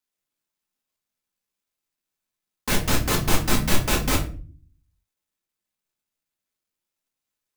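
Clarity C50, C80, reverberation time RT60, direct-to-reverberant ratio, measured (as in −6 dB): 10.5 dB, 16.0 dB, 0.40 s, −1.5 dB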